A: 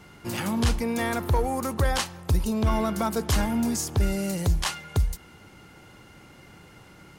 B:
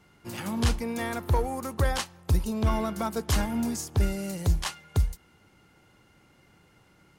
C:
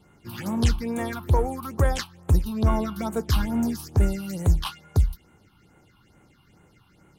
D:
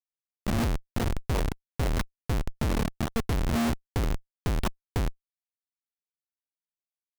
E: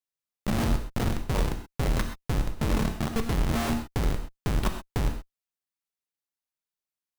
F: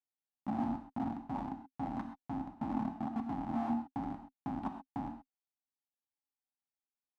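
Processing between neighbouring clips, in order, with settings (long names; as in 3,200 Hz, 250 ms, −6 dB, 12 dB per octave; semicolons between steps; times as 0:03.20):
expander for the loud parts 1.5 to 1, over −38 dBFS
all-pass phaser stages 6, 2.3 Hz, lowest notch 490–4,900 Hz; level +3 dB
comparator with hysteresis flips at −23 dBFS
reverb whose tail is shaped and stops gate 150 ms flat, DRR 5 dB
pair of resonant band-passes 460 Hz, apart 1.6 octaves; level +2 dB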